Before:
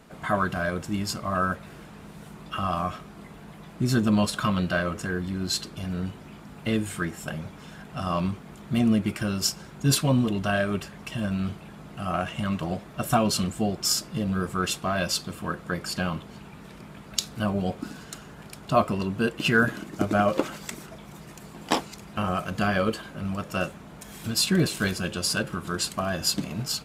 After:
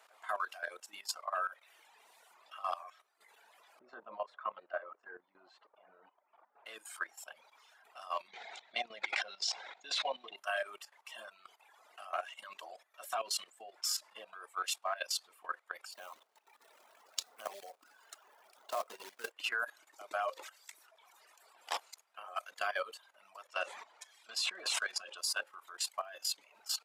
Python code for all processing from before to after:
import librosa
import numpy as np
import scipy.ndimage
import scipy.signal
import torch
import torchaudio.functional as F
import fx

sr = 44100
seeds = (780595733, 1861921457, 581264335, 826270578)

y = fx.chain(x, sr, fx.lowpass(hz=1100.0, slope=12),
    fx.low_shelf(hz=390.0, db=2.5), at=(3.79, 6.66))
y = fx.chain(y, sr, fx.cabinet(low_hz=150.0, low_slope=24, high_hz=6200.0, hz=(190.0, 490.0, 750.0, 1200.0, 2100.0, 3800.0), db=(8, 3, 8, -5, 9, 10)),
    fx.sustainer(db_per_s=31.0), at=(8.28, 10.36))
y = fx.chain(y, sr, fx.tilt_shelf(db=6.5, hz=930.0),
    fx.quant_float(bits=2), at=(15.91, 19.32))
y = fx.chain(y, sr, fx.lowpass(hz=7000.0, slope=12),
    fx.sustainer(db_per_s=35.0), at=(23.47, 25.18))
y = scipy.signal.sosfilt(scipy.signal.butter(4, 640.0, 'highpass', fs=sr, output='sos'), y)
y = fx.dereverb_blind(y, sr, rt60_s=1.3)
y = fx.level_steps(y, sr, step_db=15)
y = F.gain(torch.from_numpy(y), -4.0).numpy()